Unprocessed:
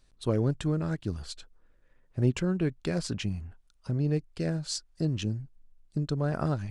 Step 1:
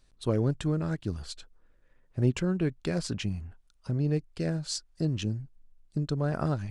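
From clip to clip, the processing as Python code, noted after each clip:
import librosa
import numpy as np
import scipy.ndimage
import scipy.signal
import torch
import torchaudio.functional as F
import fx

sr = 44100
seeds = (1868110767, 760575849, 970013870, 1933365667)

y = x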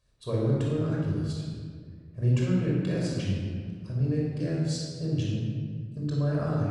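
y = scipy.signal.sosfilt(scipy.signal.butter(2, 42.0, 'highpass', fs=sr, output='sos'), x)
y = fx.room_shoebox(y, sr, seeds[0], volume_m3=2800.0, walls='mixed', distance_m=5.6)
y = F.gain(torch.from_numpy(y), -9.0).numpy()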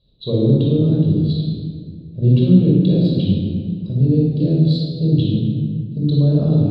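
y = fx.curve_eq(x, sr, hz=(110.0, 170.0, 480.0, 1900.0, 3900.0, 5800.0), db=(0, 8, 2, -26, 11, -30))
y = F.gain(torch.from_numpy(y), 8.0).numpy()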